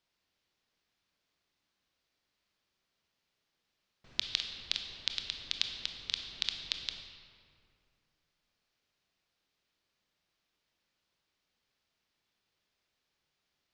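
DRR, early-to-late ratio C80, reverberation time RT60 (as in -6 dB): 4.5 dB, 7.0 dB, 2.4 s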